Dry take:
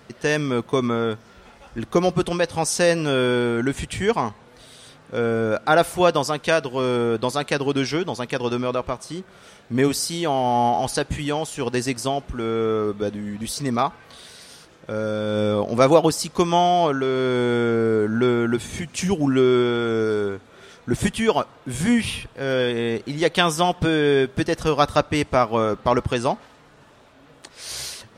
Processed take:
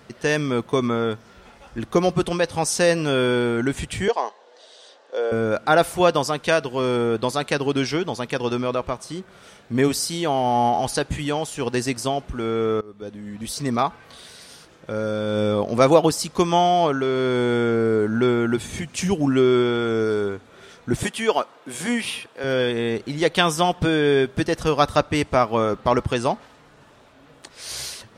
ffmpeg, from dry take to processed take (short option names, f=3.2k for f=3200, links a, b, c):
-filter_complex "[0:a]asettb=1/sr,asplit=3[a][b][c];[a]atrim=end=4.084[d];[b]atrim=start=4.08:end=5.32,asetpts=PTS-STARTPTS,afade=t=in:d=0.004:c=qsin,afade=t=out:st=1.236:d=0.004:c=qsin,highpass=f=420:w=0.5412,highpass=f=420:w=1.3066,equalizer=f=570:t=q:w=4:g=4,equalizer=f=1.3k:t=q:w=4:g=-8,equalizer=f=2.3k:t=q:w=4:g=-9,lowpass=f=6.9k:w=0.5412,lowpass=f=6.9k:w=1.3066[e];[c]atrim=start=5.316[f];[d][e]acrossfade=d=0.004:c1=hsin:c2=qsin[g];[g][f]acrossfade=d=0.004:c1=qsin:c2=hsin,asettb=1/sr,asplit=3[h][i][j];[h]atrim=end=21.034[k];[i]atrim=start=21.03:end=22.44,asetpts=PTS-STARTPTS,afade=t=in:d=0.004:c=qsin,afade=t=out:st=1.406:d=0.004:c=qsin,highpass=310[l];[j]atrim=start=22.436[m];[k][l]acrossfade=d=0.004:c1=hsin:c2=qsin[n];[n][m]acrossfade=d=0.004:c1=qsin:c2=hsin,asplit=2[o][p];[o]atrim=end=12.81,asetpts=PTS-STARTPTS,afade=t=out:st=12.806:d=0.004:c=hsin:silence=0.0630957[q];[p]atrim=start=12.81,asetpts=PTS-STARTPTS,afade=t=in:d=0.84:silence=0.0630957[r];[q][r]concat=n=2:v=0:a=1"